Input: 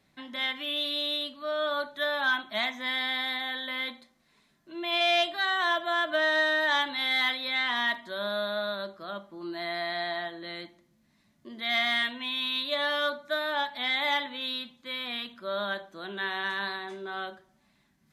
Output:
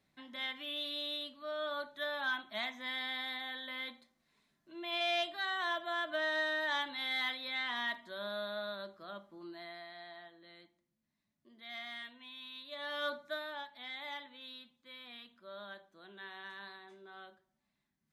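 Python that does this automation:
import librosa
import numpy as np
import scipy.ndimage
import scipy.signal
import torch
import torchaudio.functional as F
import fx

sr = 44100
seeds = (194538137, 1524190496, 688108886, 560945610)

y = fx.gain(x, sr, db=fx.line((9.36, -9.0), (9.9, -18.5), (12.65, -18.5), (13.14, -6.0), (13.67, -16.5)))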